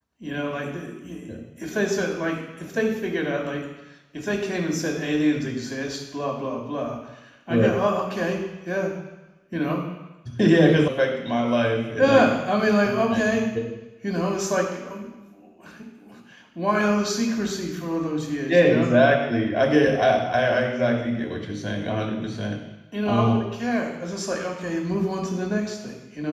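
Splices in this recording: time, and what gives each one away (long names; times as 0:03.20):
0:10.88: cut off before it has died away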